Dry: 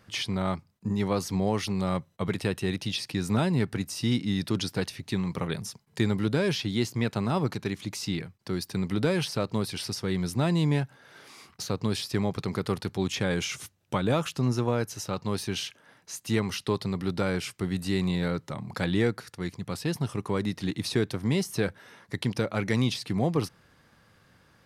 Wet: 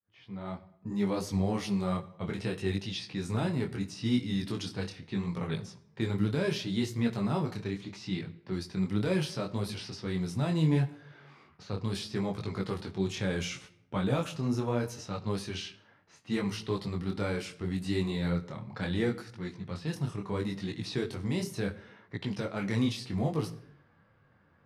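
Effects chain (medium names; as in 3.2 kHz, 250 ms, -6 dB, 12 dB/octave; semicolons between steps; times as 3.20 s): fade-in on the opening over 1.00 s; harmonic-percussive split percussive -4 dB; level-controlled noise filter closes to 1.8 kHz, open at -25 dBFS; reverberation RT60 0.75 s, pre-delay 10 ms, DRR 13 dB; detune thickener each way 25 cents; trim +1 dB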